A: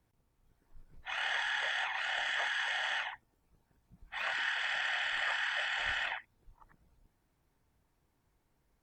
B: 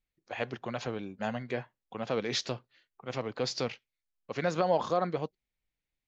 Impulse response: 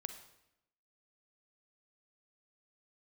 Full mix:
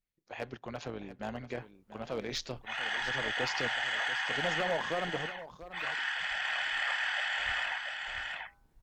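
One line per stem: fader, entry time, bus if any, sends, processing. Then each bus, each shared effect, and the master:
0.0 dB, 1.60 s, no send, echo send −4 dB, hum removal 100.8 Hz, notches 15
−2.0 dB, 0.00 s, no send, echo send −13.5 dB, amplitude modulation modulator 160 Hz, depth 40%; gain into a clipping stage and back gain 25 dB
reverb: not used
echo: single-tap delay 688 ms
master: no processing

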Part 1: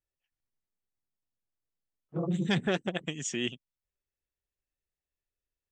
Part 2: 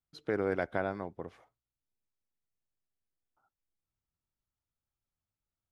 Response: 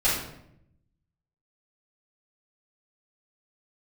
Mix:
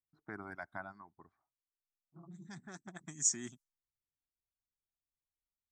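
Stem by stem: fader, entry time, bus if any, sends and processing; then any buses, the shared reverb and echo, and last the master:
0:02.62 −16.5 dB → 0:03.15 −4.5 dB, 0.00 s, no send, high shelf with overshoot 4,300 Hz +10.5 dB, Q 1.5
−4.5 dB, 0.00 s, no send, reverb reduction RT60 1.9 s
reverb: not used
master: low-pass that shuts in the quiet parts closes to 750 Hz, open at −36.5 dBFS; low-shelf EQ 170 Hz −7.5 dB; phaser with its sweep stopped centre 1,200 Hz, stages 4

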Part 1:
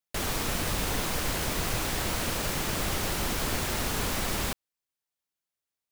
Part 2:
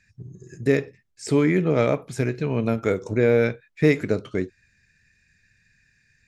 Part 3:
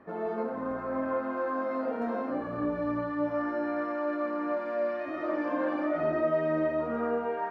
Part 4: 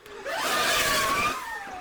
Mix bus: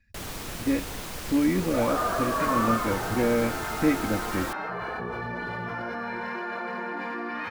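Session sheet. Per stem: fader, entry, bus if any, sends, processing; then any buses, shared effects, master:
−6.5 dB, 0.00 s, no send, no processing
−10.0 dB, 0.00 s, no send, low-pass filter 3,900 Hz; low-shelf EQ 200 Hz +11.5 dB; comb filter 3.6 ms, depth 89%
+1.5 dB, 2.40 s, no send, gate on every frequency bin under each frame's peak −15 dB weak; high-pass filter 93 Hz; envelope flattener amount 100%
+1.0 dB, 1.45 s, no send, elliptic band-pass filter 220–1,300 Hz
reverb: not used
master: no processing

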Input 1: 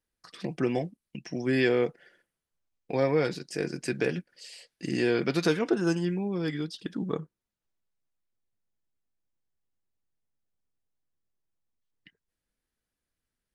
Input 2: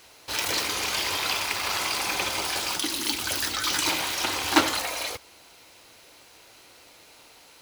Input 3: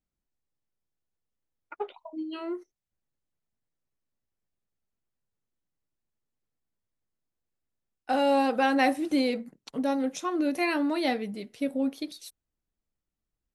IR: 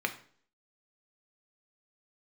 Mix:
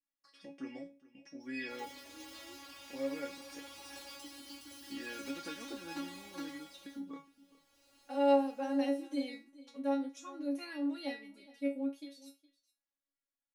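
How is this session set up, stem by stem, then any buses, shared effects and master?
−1.5 dB, 0.00 s, muted 0:03.60–0:04.90, send −15 dB, echo send −18 dB, low-shelf EQ 130 Hz −10 dB
−3.0 dB, 1.40 s, no send, echo send −12.5 dB, low-shelf EQ 330 Hz +10.5 dB; automatic ducking −11 dB, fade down 0.95 s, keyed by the first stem
0.0 dB, 0.00 s, no send, echo send −20 dB, high-pass filter 240 Hz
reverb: on, RT60 0.50 s, pre-delay 3 ms
echo: single-tap delay 415 ms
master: tuned comb filter 280 Hz, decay 0.25 s, harmonics all, mix 100%

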